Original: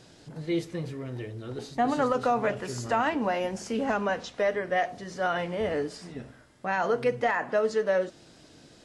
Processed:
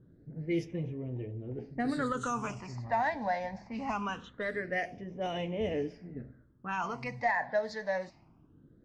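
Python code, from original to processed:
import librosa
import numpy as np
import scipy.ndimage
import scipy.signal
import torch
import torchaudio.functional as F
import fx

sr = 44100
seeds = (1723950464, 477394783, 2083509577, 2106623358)

y = fx.env_lowpass(x, sr, base_hz=480.0, full_db=-22.0)
y = fx.high_shelf_res(y, sr, hz=4900.0, db=9.5, q=1.5, at=(2.17, 2.76))
y = fx.phaser_stages(y, sr, stages=8, low_hz=370.0, high_hz=1400.0, hz=0.23, feedback_pct=30)
y = F.gain(torch.from_numpy(y), -2.0).numpy()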